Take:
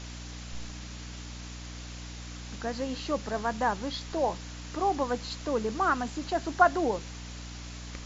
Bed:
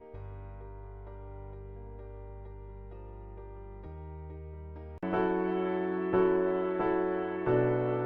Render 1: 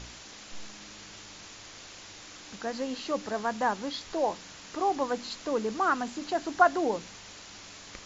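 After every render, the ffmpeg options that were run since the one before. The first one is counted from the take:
-af "bandreject=f=60:t=h:w=4,bandreject=f=120:t=h:w=4,bandreject=f=180:t=h:w=4,bandreject=f=240:t=h:w=4,bandreject=f=300:t=h:w=4"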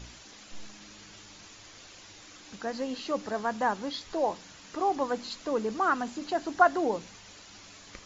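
-af "afftdn=nr=6:nf=-48"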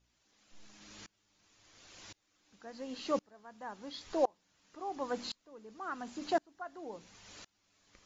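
-af "aeval=exprs='val(0)*pow(10,-31*if(lt(mod(-0.94*n/s,1),2*abs(-0.94)/1000),1-mod(-0.94*n/s,1)/(2*abs(-0.94)/1000),(mod(-0.94*n/s,1)-2*abs(-0.94)/1000)/(1-2*abs(-0.94)/1000))/20)':c=same"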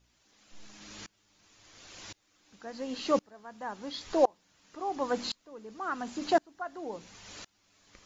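-af "volume=2"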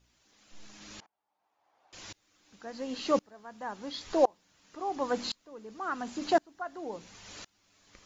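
-filter_complex "[0:a]asettb=1/sr,asplit=3[s0][s1][s2];[s0]atrim=end=1.004[s3];[s1]atrim=start=1:end=1.93,asetpts=PTS-STARTPTS,afade=t=in:d=0.004:c=qsin,afade=t=out:st=0.926:d=0.004:c=qsin,bandpass=f=800:t=q:w=4.6[s4];[s2]atrim=start=1.926[s5];[s3][s4]acrossfade=d=0.004:c1=hsin:c2=qsin[s6];[s6][s5]acrossfade=d=0.004:c1=qsin:c2=hsin"

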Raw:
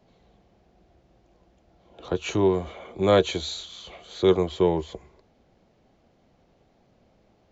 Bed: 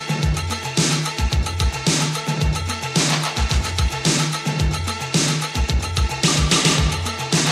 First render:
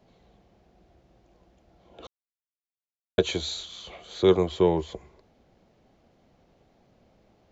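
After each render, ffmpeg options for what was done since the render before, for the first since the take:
-filter_complex "[0:a]asplit=3[s0][s1][s2];[s0]atrim=end=2.07,asetpts=PTS-STARTPTS,afade=t=out:st=2.066:d=0.004:c=hsin[s3];[s1]atrim=start=2.07:end=3.18,asetpts=PTS-STARTPTS,volume=0[s4];[s2]atrim=start=3.18,asetpts=PTS-STARTPTS,afade=t=in:d=0.004:c=hsin[s5];[s3][s4][s5]concat=n=3:v=0:a=1"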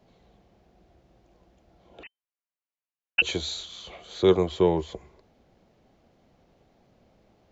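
-filter_complex "[0:a]asettb=1/sr,asplit=3[s0][s1][s2];[s0]atrim=end=2.034[s3];[s1]atrim=start=2.03:end=3.22,asetpts=PTS-STARTPTS,afade=t=in:d=0.004:c=qsin,afade=t=out:st=1.186:d=0.004:c=qsin,lowpass=f=2600:t=q:w=0.5098,lowpass=f=2600:t=q:w=0.6013,lowpass=f=2600:t=q:w=0.9,lowpass=f=2600:t=q:w=2.563,afreqshift=-3100[s4];[s2]atrim=start=3.216[s5];[s3][s4]acrossfade=d=0.004:c1=hsin:c2=qsin[s6];[s6][s5]acrossfade=d=0.004:c1=qsin:c2=hsin"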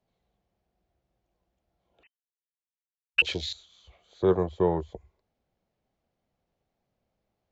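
-af "afwtdn=0.02,equalizer=f=300:w=0.93:g=-4.5"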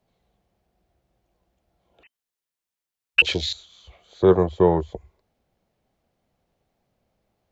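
-af "volume=2.24,alimiter=limit=0.794:level=0:latency=1"

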